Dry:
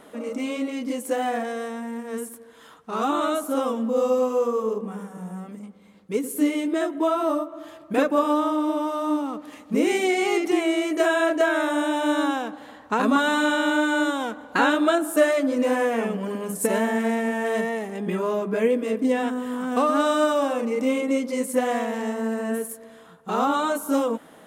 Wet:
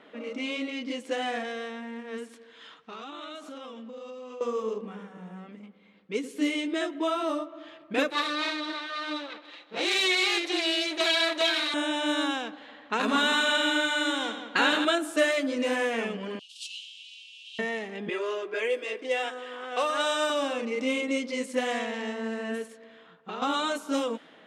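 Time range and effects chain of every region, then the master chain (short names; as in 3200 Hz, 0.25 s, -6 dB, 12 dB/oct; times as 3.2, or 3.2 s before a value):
2.29–4.41 compressor 10:1, threshold -33 dBFS + bell 6700 Hz +8 dB 2.4 oct
8.1–11.74 minimum comb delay 5.9 ms + HPF 380 Hz + bell 3900 Hz +13.5 dB 0.21 oct
12.61–14.85 notches 50/100/150/200/250/300/350/400 Hz + multi-head echo 85 ms, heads first and second, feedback 40%, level -11 dB
16.39–17.59 CVSD 64 kbps + steep high-pass 2700 Hz 96 dB/oct
18.09–20.3 steep high-pass 330 Hz + notch 4100 Hz, Q 18 + comb 5.5 ms, depth 49%
22.66–23.42 LPF 12000 Hz + compressor 12:1, threshold -26 dBFS
whole clip: weighting filter D; low-pass opened by the level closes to 2400 Hz, open at -15.5 dBFS; bell 290 Hz +2 dB 2.5 oct; gain -7 dB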